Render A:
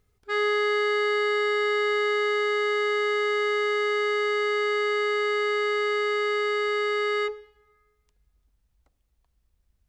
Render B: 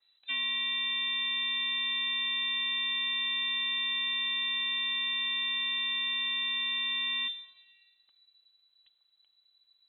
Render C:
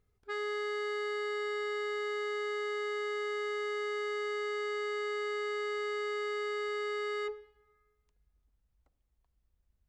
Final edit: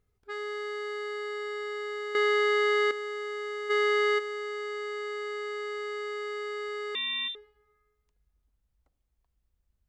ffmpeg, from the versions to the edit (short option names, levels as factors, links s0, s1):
-filter_complex "[0:a]asplit=2[s0][s1];[2:a]asplit=4[s2][s3][s4][s5];[s2]atrim=end=2.152[s6];[s0]atrim=start=2.148:end=2.912[s7];[s3]atrim=start=2.908:end=3.71[s8];[s1]atrim=start=3.69:end=4.2[s9];[s4]atrim=start=4.18:end=6.952[s10];[1:a]atrim=start=6.948:end=7.352[s11];[s5]atrim=start=7.348[s12];[s6][s7]acrossfade=d=0.004:c1=hsin:c2=hsin[s13];[s13][s8]acrossfade=d=0.004:c1=hsin:c2=hsin[s14];[s14][s9]acrossfade=d=0.02:c1=tri:c2=tri[s15];[s15][s10]acrossfade=d=0.02:c1=tri:c2=tri[s16];[s16][s11]acrossfade=d=0.004:c1=hsin:c2=hsin[s17];[s17][s12]acrossfade=d=0.004:c1=hsin:c2=hsin"